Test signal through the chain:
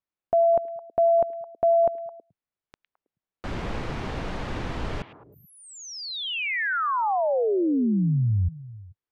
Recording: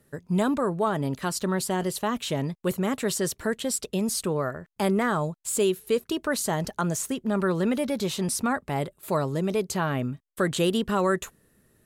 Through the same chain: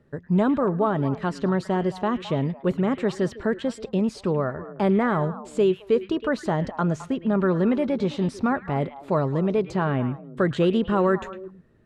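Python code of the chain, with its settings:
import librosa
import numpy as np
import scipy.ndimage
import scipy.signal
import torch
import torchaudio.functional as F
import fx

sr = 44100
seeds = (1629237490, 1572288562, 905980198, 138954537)

p1 = fx.spacing_loss(x, sr, db_at_10k=30)
p2 = p1 + fx.echo_stepped(p1, sr, ms=107, hz=2500.0, octaves=-1.4, feedback_pct=70, wet_db=-8.5, dry=0)
y = p2 * librosa.db_to_amplitude(4.5)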